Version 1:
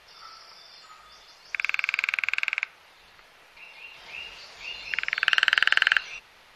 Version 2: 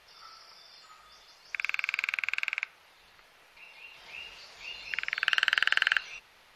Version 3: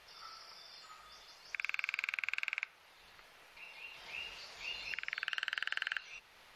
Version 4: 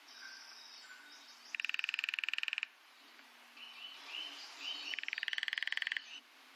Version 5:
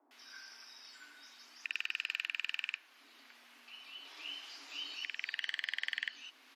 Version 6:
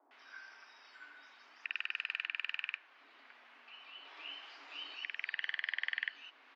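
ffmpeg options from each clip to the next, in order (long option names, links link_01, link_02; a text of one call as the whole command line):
ffmpeg -i in.wav -af "highshelf=frequency=9300:gain=4.5,volume=-5dB" out.wav
ffmpeg -i in.wav -af "alimiter=limit=-20.5dB:level=0:latency=1:release=464,volume=-1dB" out.wav
ffmpeg -i in.wav -af "afreqshift=240" out.wav
ffmpeg -i in.wav -filter_complex "[0:a]acrossover=split=840[link_01][link_02];[link_02]adelay=110[link_03];[link_01][link_03]amix=inputs=2:normalize=0" out.wav
ffmpeg -i in.wav -af "highpass=410,lowpass=2200,volume=3.5dB" out.wav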